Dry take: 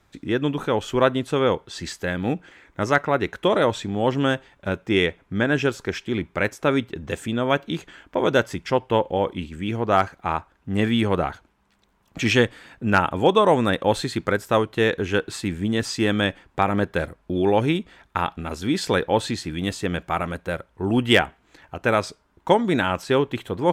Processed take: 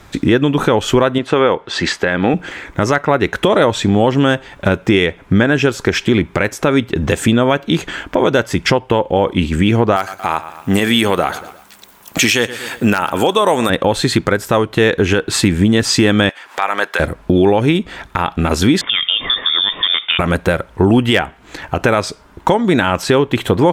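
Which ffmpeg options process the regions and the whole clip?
-filter_complex "[0:a]asettb=1/sr,asplit=3[a][b][c];[a]atrim=end=1.184[d];[b]atrim=start=1.18:end=2.34,asetpts=PTS-STARTPTS,afade=t=in:d=0.004:c=qsin,afade=t=out:st=1.156:d=0.004:c=qsin,lowpass=2.4k,aemphasis=mode=production:type=bsi[e];[c]atrim=start=2.336[f];[d][e]acrossfade=d=0.004:c1=hsin:c2=qsin[g];[g][f]acrossfade=d=0.004:c1=qsin:c2=hsin,asettb=1/sr,asplit=3[h][i][j];[h]atrim=end=9.964[k];[i]atrim=start=9.96:end=13.7,asetpts=PTS-STARTPTS,afade=t=in:d=0.004:c=qsin,afade=t=out:st=3.736:d=0.004:c=qsin,aemphasis=mode=production:type=bsi,aecho=1:1:117|234|351:0.0891|0.0312|0.0109,atrim=end_sample=164934[l];[j]atrim=start=13.696[m];[k][l]acrossfade=d=0.004:c1=hsin:c2=qsin[n];[n][m]acrossfade=d=0.004:c1=qsin:c2=hsin,asettb=1/sr,asplit=3[o][p][q];[o]atrim=end=16.294[r];[p]atrim=start=16.29:end=17,asetpts=PTS-STARTPTS,afade=t=in:d=0.004:c=qsin,afade=t=out:st=0.706:d=0.004:c=qsin,highpass=920,acompressor=mode=upward:threshold=-45dB:ratio=2.5:attack=3.2:release=140:knee=2.83:detection=peak[s];[q]atrim=start=16.996[t];[r][s]acrossfade=d=0.004:c1=hsin:c2=qsin[u];[u][t]acrossfade=d=0.004:c1=qsin:c2=hsin,asettb=1/sr,asplit=3[v][w][x];[v]atrim=end=18.814[y];[w]atrim=start=18.81:end=20.19,asetpts=PTS-STARTPTS,afade=t=in:d=0.004:c=qsin,afade=t=out:st=1.376:d=0.004:c=qsin,acompressor=threshold=-30dB:ratio=12:attack=3.2:release=140:knee=1:detection=peak,lowpass=f=3.1k:t=q:w=0.5098,lowpass=f=3.1k:t=q:w=0.6013,lowpass=f=3.1k:t=q:w=0.9,lowpass=f=3.1k:t=q:w=2.563,afreqshift=-3700[z];[x]atrim=start=20.186[aa];[y][z]acrossfade=d=0.004:c1=hsin:c2=qsin[ab];[ab][aa]acrossfade=d=0.004:c1=qsin:c2=hsin,acompressor=threshold=-29dB:ratio=6,alimiter=level_in=21dB:limit=-1dB:release=50:level=0:latency=1,volume=-1dB"

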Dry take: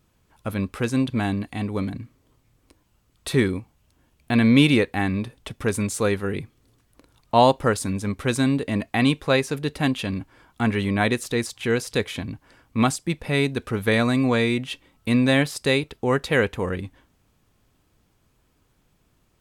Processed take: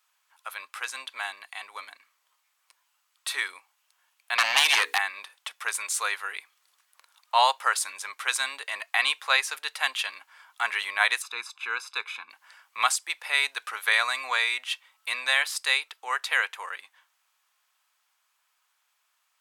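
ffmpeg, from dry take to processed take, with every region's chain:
-filter_complex "[0:a]asettb=1/sr,asplit=3[a][b][c];[a]atrim=end=4.384[d];[b]atrim=start=4.38:end=4.98,asetpts=PTS-STARTPTS,afade=t=in:d=0.004:c=qsin,afade=t=out:st=0.596:d=0.004:c=qsin,bandreject=f=60:t=h:w=6,bandreject=f=120:t=h:w=6,bandreject=f=180:t=h:w=6,bandreject=f=240:t=h:w=6,bandreject=f=300:t=h:w=6,bandreject=f=360:t=h:w=6,bandreject=f=420:t=h:w=6,bandreject=f=480:t=h:w=6,acrossover=split=310|4400[e][f][g];[e]acompressor=threshold=-24dB:ratio=4[h];[f]acompressor=threshold=-29dB:ratio=4[i];[g]acompressor=threshold=-39dB:ratio=4[j];[h][i][j]amix=inputs=3:normalize=0,aeval=exprs='0.282*sin(PI/2*3.16*val(0)/0.282)':c=same[k];[c]atrim=start=4.976[l];[d][k]acrossfade=d=0.004:c1=hsin:c2=qsin[m];[m][l]acrossfade=d=0.004:c1=qsin:c2=hsin,asettb=1/sr,asplit=3[n][o][p];[n]atrim=end=11.224[q];[o]atrim=start=11.22:end=12.3,asetpts=PTS-STARTPTS,afade=t=in:d=0.004:c=qsin,afade=t=out:st=1.076:d=0.004:c=qsin,lowpass=f=1.1k:p=1,aecho=1:1:0.8:0.87,atrim=end_sample=47628[r];[p]atrim=start=12.296[s];[q][r]acrossfade=d=0.004:c1=hsin:c2=qsin[t];[t][s]acrossfade=d=0.004:c1=qsin:c2=hsin,highpass=f=960:w=0.5412,highpass=f=960:w=1.3066,dynaudnorm=f=540:g=17:m=4dB"

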